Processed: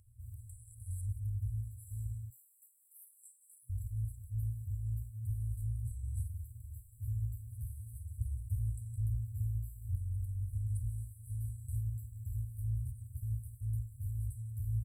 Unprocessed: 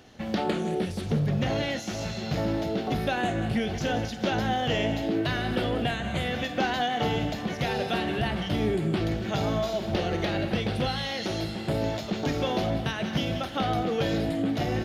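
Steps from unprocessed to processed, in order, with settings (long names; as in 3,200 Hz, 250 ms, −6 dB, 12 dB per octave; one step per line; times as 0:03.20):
far-end echo of a speakerphone 230 ms, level −11 dB
0:02.30–0:03.70: frequency shifter +270 Hz
brick-wall band-stop 120–7,600 Hz
level −1 dB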